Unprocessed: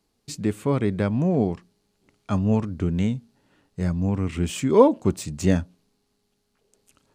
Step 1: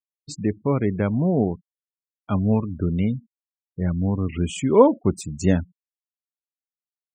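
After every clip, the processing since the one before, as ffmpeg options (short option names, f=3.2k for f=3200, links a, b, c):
-af "afftfilt=real='re*gte(hypot(re,im),0.0224)':imag='im*gte(hypot(re,im),0.0224)':win_size=1024:overlap=0.75,volume=1dB"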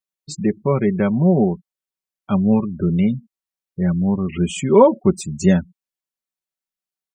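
-af "aecho=1:1:5.3:0.65,volume=2.5dB"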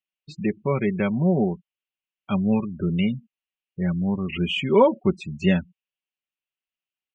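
-af "lowpass=f=2.8k:t=q:w=5.1,volume=-5.5dB"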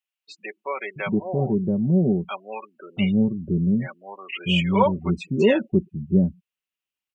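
-filter_complex "[0:a]acrossover=split=540[a][b];[a]adelay=680[c];[c][b]amix=inputs=2:normalize=0,volume=2dB"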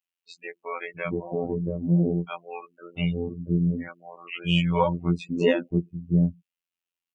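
-af "afftfilt=real='hypot(re,im)*cos(PI*b)':imag='0':win_size=2048:overlap=0.75"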